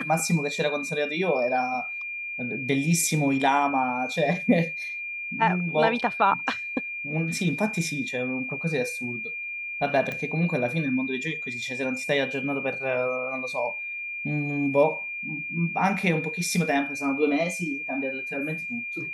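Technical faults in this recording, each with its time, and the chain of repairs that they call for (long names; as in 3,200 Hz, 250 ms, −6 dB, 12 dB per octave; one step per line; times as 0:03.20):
whistle 2,400 Hz −31 dBFS
0:10.12: click −18 dBFS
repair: click removal
notch filter 2,400 Hz, Q 30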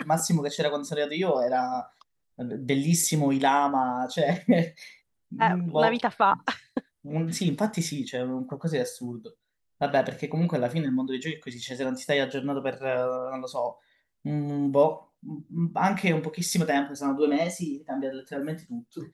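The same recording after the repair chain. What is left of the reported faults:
none of them is left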